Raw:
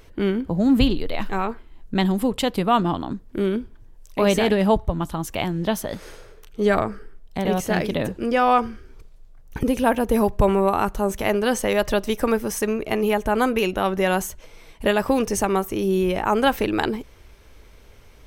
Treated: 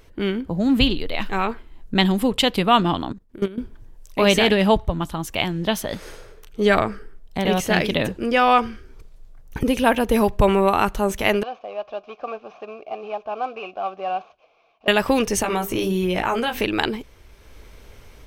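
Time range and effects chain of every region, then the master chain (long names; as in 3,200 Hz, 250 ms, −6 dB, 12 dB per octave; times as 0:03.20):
0:03.12–0:03.58: output level in coarse steps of 20 dB + hard clipping −15 dBFS
0:11.43–0:14.88: variable-slope delta modulation 32 kbit/s + formant filter a + hard clipping −19.5 dBFS
0:15.42–0:16.61: mains-hum notches 50/100/150/200/250/300/350/400/450 Hz + double-tracking delay 17 ms −3.5 dB + downward compressor, threshold −21 dBFS
whole clip: dynamic equaliser 3,000 Hz, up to +8 dB, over −41 dBFS, Q 0.85; automatic gain control gain up to 6 dB; level −2 dB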